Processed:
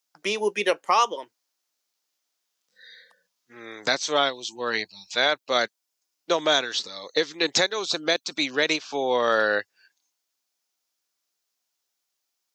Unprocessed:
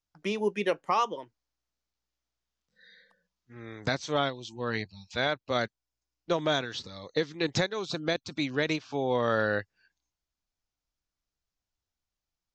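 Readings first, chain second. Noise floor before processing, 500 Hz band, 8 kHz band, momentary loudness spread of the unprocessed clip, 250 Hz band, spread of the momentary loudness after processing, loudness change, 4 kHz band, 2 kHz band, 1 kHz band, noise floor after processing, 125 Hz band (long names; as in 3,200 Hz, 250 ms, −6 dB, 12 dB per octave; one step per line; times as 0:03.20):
below −85 dBFS, +4.5 dB, +12.5 dB, 9 LU, 0.0 dB, 8 LU, +6.0 dB, +10.0 dB, +7.0 dB, +6.0 dB, −80 dBFS, −10.5 dB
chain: high-pass filter 360 Hz 12 dB per octave
high-shelf EQ 3,800 Hz +9.5 dB
level +5.5 dB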